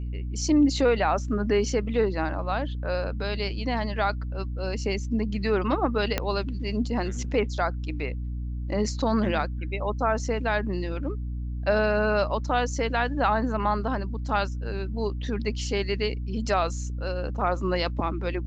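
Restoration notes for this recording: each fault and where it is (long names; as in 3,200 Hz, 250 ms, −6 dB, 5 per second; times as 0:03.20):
mains hum 60 Hz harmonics 5 −31 dBFS
0:06.18: click −9 dBFS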